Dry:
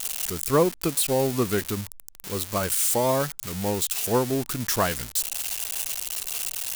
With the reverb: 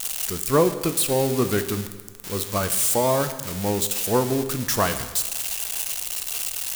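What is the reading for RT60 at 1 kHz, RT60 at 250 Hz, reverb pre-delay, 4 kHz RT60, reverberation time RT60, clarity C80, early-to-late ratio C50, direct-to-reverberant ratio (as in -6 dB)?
1.4 s, 1.4 s, 7 ms, 1.3 s, 1.4 s, 12.5 dB, 11.0 dB, 9.0 dB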